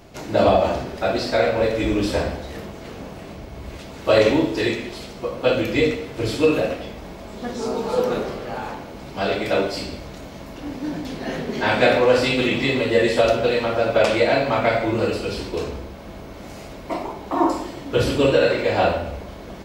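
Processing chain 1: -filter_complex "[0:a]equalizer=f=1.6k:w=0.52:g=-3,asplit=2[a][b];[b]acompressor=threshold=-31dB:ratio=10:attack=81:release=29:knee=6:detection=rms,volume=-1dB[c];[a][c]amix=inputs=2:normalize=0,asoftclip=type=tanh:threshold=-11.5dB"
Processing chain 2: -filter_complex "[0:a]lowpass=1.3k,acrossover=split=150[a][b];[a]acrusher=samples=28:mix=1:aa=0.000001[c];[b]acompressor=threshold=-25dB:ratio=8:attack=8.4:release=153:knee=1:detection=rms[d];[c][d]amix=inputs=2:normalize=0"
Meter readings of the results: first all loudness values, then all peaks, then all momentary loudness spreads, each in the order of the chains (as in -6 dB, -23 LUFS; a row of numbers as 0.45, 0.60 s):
-22.0, -30.0 LUFS; -11.5, -14.5 dBFS; 13, 10 LU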